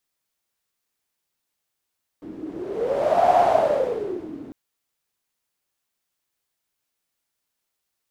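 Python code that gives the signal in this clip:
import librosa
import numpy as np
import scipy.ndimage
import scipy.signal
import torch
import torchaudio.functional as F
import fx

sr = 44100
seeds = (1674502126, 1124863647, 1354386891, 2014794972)

y = fx.wind(sr, seeds[0], length_s=2.3, low_hz=290.0, high_hz=710.0, q=11.0, gusts=1, swing_db=18.0)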